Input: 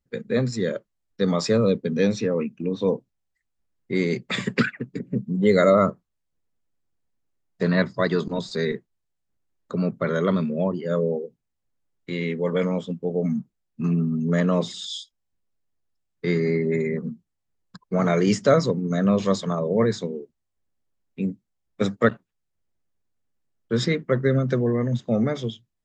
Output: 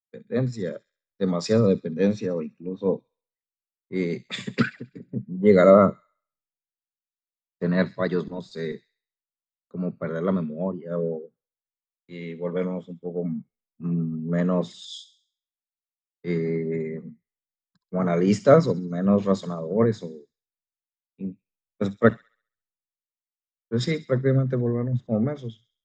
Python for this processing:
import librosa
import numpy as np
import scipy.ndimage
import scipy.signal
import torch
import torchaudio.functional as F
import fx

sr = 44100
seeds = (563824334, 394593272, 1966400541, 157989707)

y = fx.high_shelf(x, sr, hz=2100.0, db=-10.0)
y = fx.echo_wet_highpass(y, sr, ms=67, feedback_pct=58, hz=2900.0, wet_db=-12.0)
y = fx.band_widen(y, sr, depth_pct=100)
y = y * 10.0 ** (-2.5 / 20.0)